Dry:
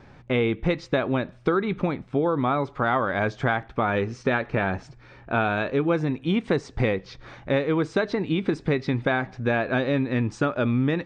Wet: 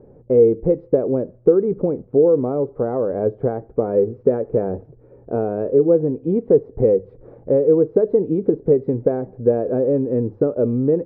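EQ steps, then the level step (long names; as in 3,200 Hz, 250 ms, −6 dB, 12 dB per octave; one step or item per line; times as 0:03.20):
low-pass with resonance 470 Hz, resonance Q 4.9
high-frequency loss of the air 88 metres
mains-hum notches 50/100 Hz
0.0 dB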